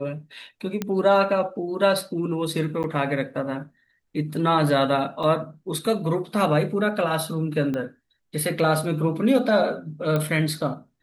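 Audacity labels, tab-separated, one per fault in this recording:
0.820000	0.820000	pop -12 dBFS
2.830000	2.840000	dropout 9.5 ms
5.230000	5.230000	dropout 4.9 ms
7.740000	7.740000	pop -17 dBFS
10.160000	10.160000	pop -13 dBFS

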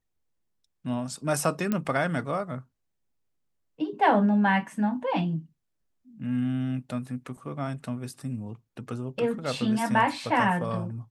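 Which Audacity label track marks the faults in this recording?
1.720000	1.720000	pop -14 dBFS

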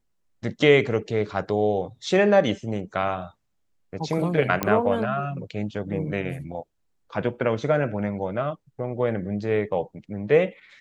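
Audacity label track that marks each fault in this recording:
4.630000	4.630000	pop -8 dBFS

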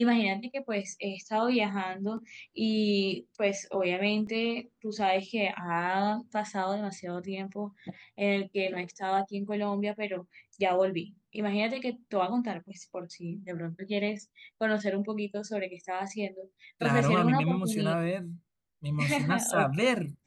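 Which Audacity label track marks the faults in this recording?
4.270000	4.270000	dropout 3.2 ms

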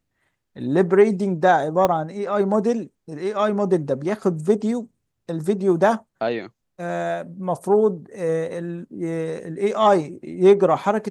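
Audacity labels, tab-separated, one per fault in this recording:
1.850000	1.850000	pop -6 dBFS

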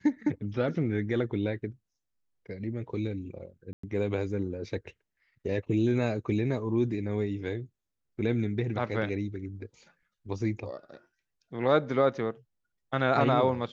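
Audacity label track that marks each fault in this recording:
3.730000	3.830000	dropout 104 ms

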